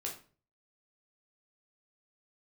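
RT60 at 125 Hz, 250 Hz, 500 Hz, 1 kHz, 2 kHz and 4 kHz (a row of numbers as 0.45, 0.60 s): 0.60, 0.50, 0.45, 0.35, 0.35, 0.30 s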